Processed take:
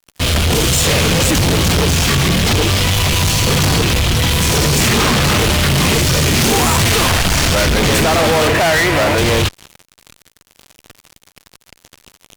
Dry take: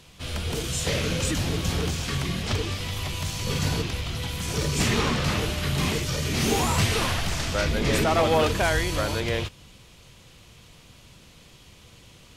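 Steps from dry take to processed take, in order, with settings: 8.47–9.18 speaker cabinet 110–2600 Hz, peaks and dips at 190 Hz -8 dB, 680 Hz +7 dB, 1900 Hz +8 dB; fuzz box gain 38 dB, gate -43 dBFS; gain +1.5 dB

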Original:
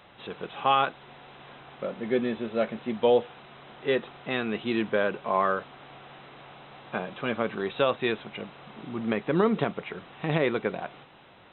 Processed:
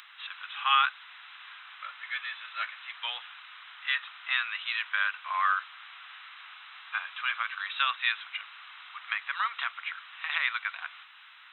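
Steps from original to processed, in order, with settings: steep high-pass 1200 Hz 36 dB/oct; upward compressor, threshold -54 dBFS; gain +5 dB

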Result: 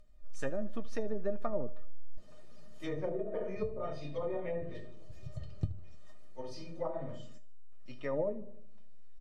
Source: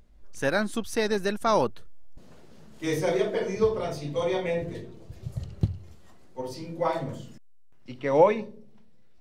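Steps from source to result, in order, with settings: treble ducked by the level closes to 340 Hz, closed at -20 dBFS; resonator 610 Hz, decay 0.16 s, harmonics all, mix 90%; feedback echo 77 ms, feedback 50%, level -19 dB; gain +7 dB

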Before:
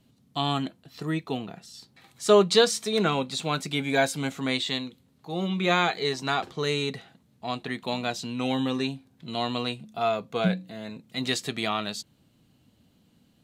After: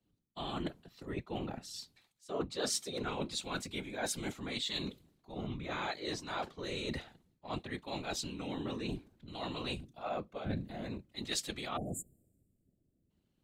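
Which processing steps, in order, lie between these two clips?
spectral delete 11.77–13.1, 650–6900 Hz; whisperiser; reverse; compressor 8:1, threshold -37 dBFS, peak gain reduction 23.5 dB; reverse; three-band expander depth 70%; gain +1 dB

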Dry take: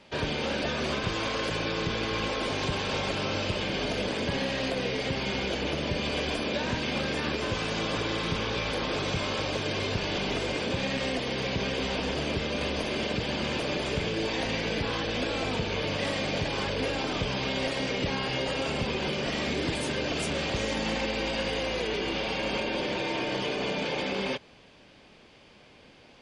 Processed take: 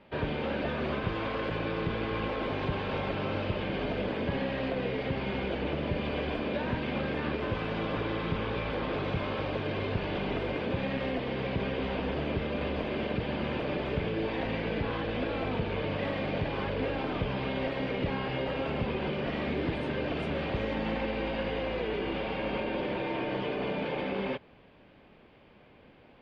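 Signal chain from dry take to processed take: air absorption 450 m

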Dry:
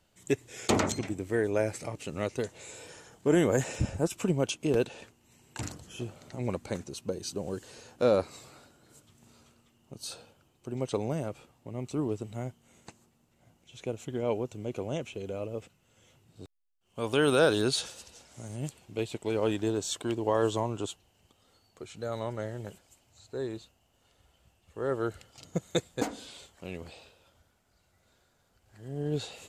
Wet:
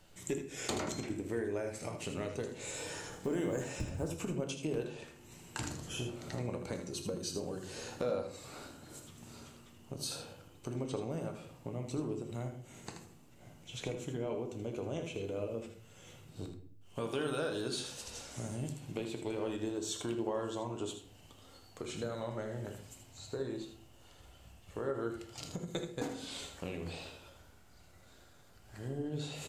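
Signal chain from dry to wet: 2.64–4.16 block floating point 7-bit; compressor 4:1, threshold -44 dBFS, peak gain reduction 21 dB; echo 79 ms -8.5 dB; reverb RT60 0.60 s, pre-delay 7 ms, DRR 5 dB; ending taper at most 220 dB/s; gain +5.5 dB

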